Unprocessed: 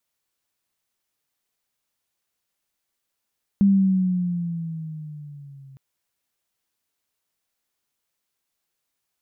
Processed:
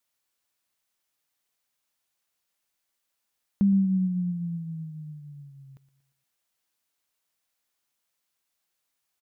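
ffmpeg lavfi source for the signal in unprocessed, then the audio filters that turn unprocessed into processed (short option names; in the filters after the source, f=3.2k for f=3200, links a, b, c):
-f lavfi -i "aevalsrc='pow(10,(-12-30.5*t/2.16)/20)*sin(2*PI*200*2.16/(-7*log(2)/12)*(exp(-7*log(2)/12*t/2.16)-1))':d=2.16:s=44100"
-af "lowshelf=f=380:g=-5,bandreject=f=410:w=12,aecho=1:1:117|234|351|468:0.126|0.0629|0.0315|0.0157"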